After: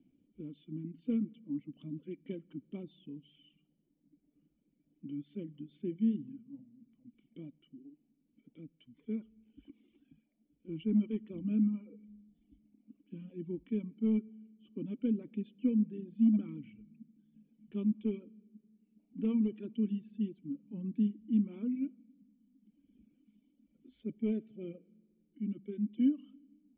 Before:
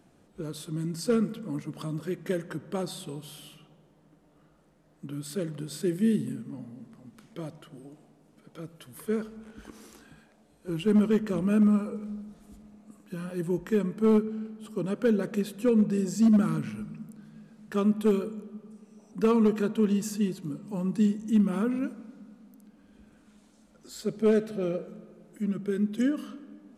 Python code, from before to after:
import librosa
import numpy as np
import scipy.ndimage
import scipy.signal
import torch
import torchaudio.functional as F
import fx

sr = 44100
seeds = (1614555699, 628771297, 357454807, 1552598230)

y = fx.dereverb_blind(x, sr, rt60_s=1.5)
y = fx.formant_cascade(y, sr, vowel='i')
y = fx.dynamic_eq(y, sr, hz=1000.0, q=1.3, threshold_db=-57.0, ratio=4.0, max_db=6)